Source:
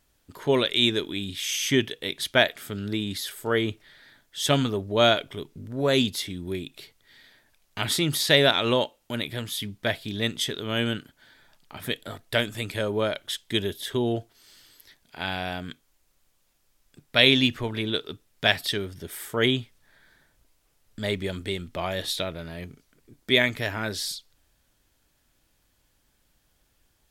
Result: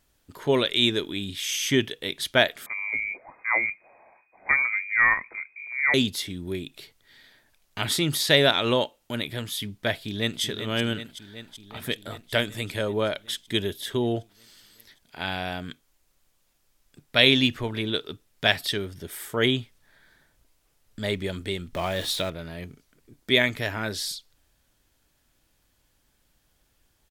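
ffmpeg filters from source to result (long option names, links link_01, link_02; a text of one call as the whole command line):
ffmpeg -i in.wav -filter_complex "[0:a]asettb=1/sr,asplit=3[link_01][link_02][link_03];[link_01]atrim=end=2.664[link_04];[link_02]atrim=start=2.66:end=5.94,asetpts=PTS-STARTPTS,afade=type=in:duration=0.004:curve=qsin,afade=type=out:start_time=3.276:duration=0.004:curve=qsin,lowpass=frequency=2100:width_type=q:width=0.5098,lowpass=frequency=2100:width_type=q:width=0.6013,lowpass=frequency=2100:width_type=q:width=0.9,lowpass=frequency=2100:width_type=q:width=2.563,afreqshift=-2500[link_05];[link_03]atrim=start=5.936[link_06];[link_04][link_05]acrossfade=duration=0.004:curve1=hsin:curve2=qsin[link_07];[link_07][link_06]acrossfade=duration=0.004:curve1=qsin:curve2=hsin,asplit=2[link_08][link_09];[link_09]afade=type=in:start_time=9.95:duration=0.01,afade=type=out:start_time=10.42:duration=0.01,aecho=0:1:380|760|1140|1520|1900|2280|2660|3040|3420|3800|4180|4560:0.316228|0.237171|0.177878|0.133409|0.100056|0.0750423|0.0562817|0.0422113|0.0316585|0.0237439|0.0178079|0.0133559[link_10];[link_08][link_10]amix=inputs=2:normalize=0,asettb=1/sr,asplit=3[link_11][link_12][link_13];[link_11]atrim=end=21.734[link_14];[link_12]atrim=start=21.73:end=22.3,asetpts=PTS-STARTPTS,afade=type=in:duration=0.004:curve=qsin,afade=type=out:start_time=0.566:duration=0.004:curve=qsin,aeval=exprs='val(0)+0.5*0.0158*sgn(val(0))':channel_layout=same[link_15];[link_13]atrim=start=22.296[link_16];[link_14][link_15]acrossfade=duration=0.004:curve1=hsin:curve2=qsin[link_17];[link_17][link_16]acrossfade=duration=0.004:curve1=qsin:curve2=hsin" out.wav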